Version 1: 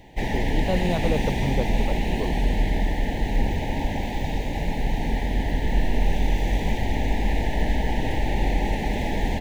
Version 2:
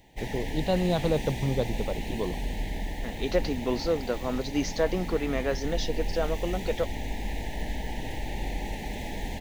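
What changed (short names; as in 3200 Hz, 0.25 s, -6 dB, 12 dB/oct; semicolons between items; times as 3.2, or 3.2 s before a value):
second voice: unmuted; background -10.0 dB; master: add high shelf 4000 Hz +10 dB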